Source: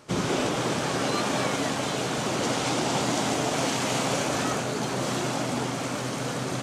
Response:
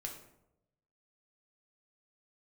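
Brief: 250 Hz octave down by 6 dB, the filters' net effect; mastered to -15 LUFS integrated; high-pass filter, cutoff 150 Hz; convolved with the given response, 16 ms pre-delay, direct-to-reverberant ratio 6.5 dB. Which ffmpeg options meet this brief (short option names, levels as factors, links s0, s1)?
-filter_complex "[0:a]highpass=150,equalizer=f=250:t=o:g=-7,asplit=2[s0][s1];[1:a]atrim=start_sample=2205,adelay=16[s2];[s1][s2]afir=irnorm=-1:irlink=0,volume=0.562[s3];[s0][s3]amix=inputs=2:normalize=0,volume=4.22"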